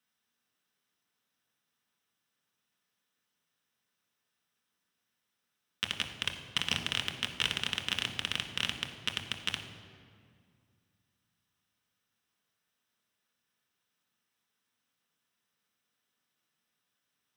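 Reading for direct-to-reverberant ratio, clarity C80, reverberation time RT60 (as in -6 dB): 3.0 dB, 9.0 dB, 2.1 s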